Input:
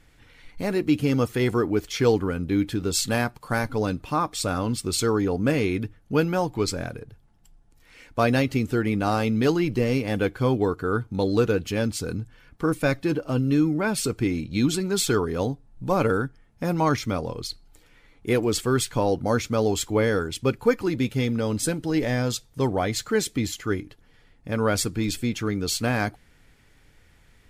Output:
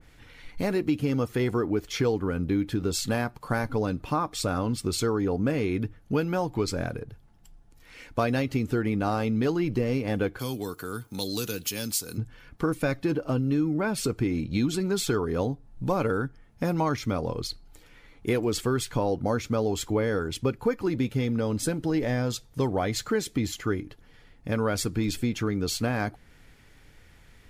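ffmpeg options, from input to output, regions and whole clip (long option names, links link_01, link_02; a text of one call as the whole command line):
ffmpeg -i in.wav -filter_complex "[0:a]asettb=1/sr,asplit=3[link_01][link_02][link_03];[link_01]atrim=end=10.394[link_04];[link_02]atrim=start=10.39:end=12.18,asetpts=PTS-STARTPTS,afade=type=in:duration=0.004:curve=qsin,afade=type=out:start_time=1.786:duration=0.004:curve=qsin,aemphasis=mode=production:type=riaa,acrossover=split=240|3000[link_05][link_06][link_07];[link_06]acompressor=threshold=-41dB:ratio=3:attack=3.2:release=140:knee=2.83:detection=peak[link_08];[link_05][link_08][link_07]amix=inputs=3:normalize=0[link_09];[link_03]atrim=start=12.176[link_10];[link_04][link_09]acrossfade=duration=0.004:curve1=hsin:curve2=qsin[link_11];[link_11][link_10]acrossfade=duration=0.004:curve1=qsin:curve2=hsin,equalizer=frequency=8300:width_type=o:width=0.31:gain=-2.5,acompressor=threshold=-26dB:ratio=3,adynamicequalizer=threshold=0.00398:dfrequency=1800:dqfactor=0.7:tfrequency=1800:tqfactor=0.7:attack=5:release=100:ratio=0.375:range=2:mode=cutabove:tftype=highshelf,volume=2.5dB" out.wav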